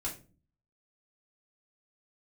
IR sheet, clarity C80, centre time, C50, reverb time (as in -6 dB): 16.5 dB, 18 ms, 10.5 dB, 0.35 s